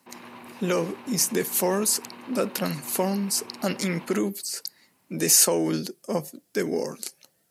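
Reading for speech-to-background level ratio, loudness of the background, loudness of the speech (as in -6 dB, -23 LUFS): 19.5 dB, -44.5 LUFS, -25.0 LUFS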